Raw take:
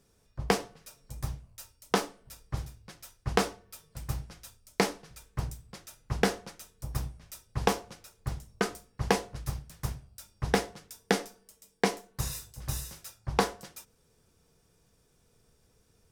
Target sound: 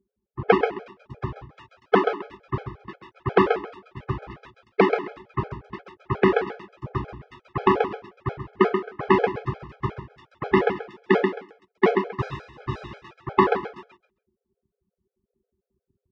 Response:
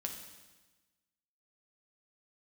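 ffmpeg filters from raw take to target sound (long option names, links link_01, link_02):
-af "anlmdn=0.000398,acontrast=23,highpass=150,equalizer=frequency=160:width_type=q:width=4:gain=-6,equalizer=frequency=380:width_type=q:width=4:gain=10,equalizer=frequency=1100:width_type=q:width=4:gain=5,lowpass=frequency=2700:width=0.5412,lowpass=frequency=2700:width=1.3066,aecho=1:1:133|266|399:0.355|0.071|0.0142,alimiter=level_in=6dB:limit=-1dB:release=50:level=0:latency=1,afftfilt=real='re*gt(sin(2*PI*5.6*pts/sr)*(1-2*mod(floor(b*sr/1024/430),2)),0)':imag='im*gt(sin(2*PI*5.6*pts/sr)*(1-2*mod(floor(b*sr/1024/430),2)),0)':win_size=1024:overlap=0.75,volume=2dB"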